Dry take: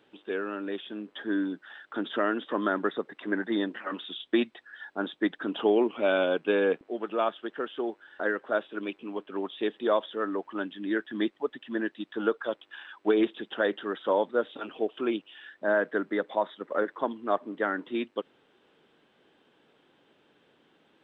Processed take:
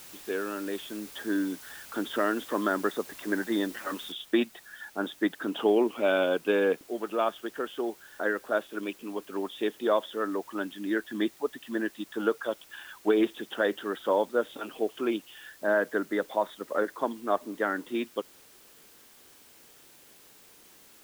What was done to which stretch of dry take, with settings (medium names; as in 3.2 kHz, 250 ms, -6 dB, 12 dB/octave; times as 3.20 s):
4.12 s: noise floor step -48 dB -56 dB